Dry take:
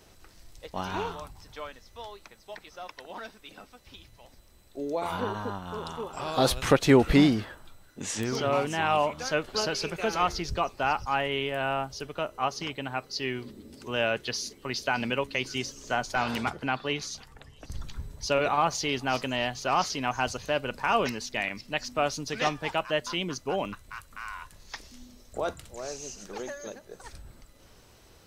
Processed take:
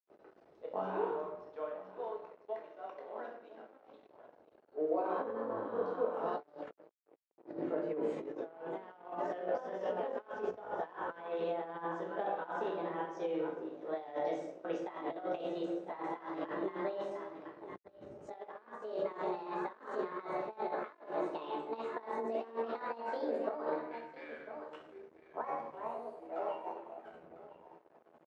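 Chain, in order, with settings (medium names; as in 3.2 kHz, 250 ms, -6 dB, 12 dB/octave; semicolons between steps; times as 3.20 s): pitch bend over the whole clip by +9 st starting unshifted; delay 1002 ms -14.5 dB; simulated room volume 260 m³, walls mixed, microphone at 1.5 m; gate with hold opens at -42 dBFS; compressor with a negative ratio -29 dBFS, ratio -0.5; crossover distortion -44 dBFS; ladder band-pass 530 Hz, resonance 35%; trim +5.5 dB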